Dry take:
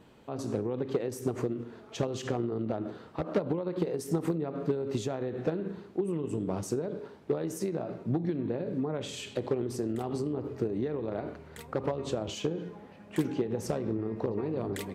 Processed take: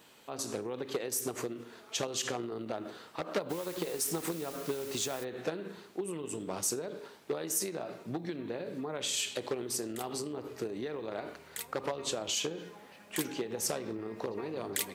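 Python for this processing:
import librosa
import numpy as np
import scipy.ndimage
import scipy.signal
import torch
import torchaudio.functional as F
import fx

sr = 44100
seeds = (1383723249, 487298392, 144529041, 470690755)

y = fx.tilt_eq(x, sr, slope=4.0)
y = fx.quant_dither(y, sr, seeds[0], bits=8, dither='triangular', at=(3.49, 5.23), fade=0.02)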